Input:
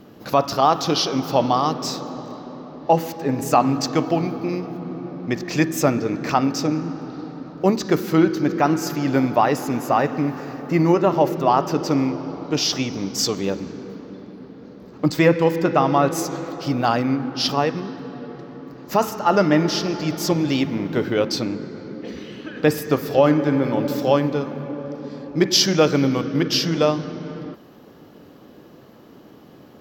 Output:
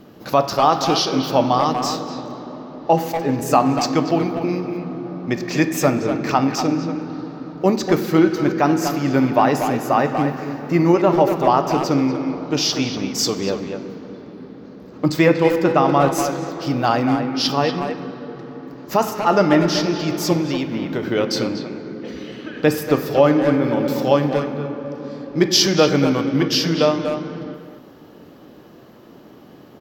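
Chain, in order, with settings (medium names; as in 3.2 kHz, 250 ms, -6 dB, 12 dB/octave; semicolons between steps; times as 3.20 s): 20.41–21.03 s: compression, threshold -21 dBFS, peak gain reduction 6 dB; speakerphone echo 240 ms, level -6 dB; on a send at -11 dB: reverberation RT60 1.1 s, pre-delay 3 ms; on the sum: trim +1 dB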